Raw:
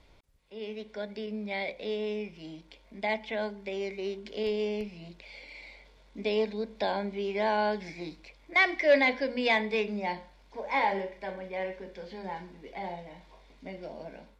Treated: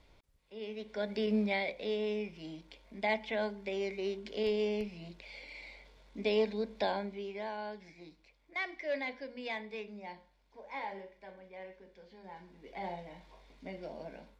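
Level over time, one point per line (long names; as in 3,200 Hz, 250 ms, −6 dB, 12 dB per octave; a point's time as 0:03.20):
0:00.73 −3.5 dB
0:01.39 +7 dB
0:01.62 −1.5 dB
0:06.79 −1.5 dB
0:07.55 −13.5 dB
0:12.21 −13.5 dB
0:12.85 −2.5 dB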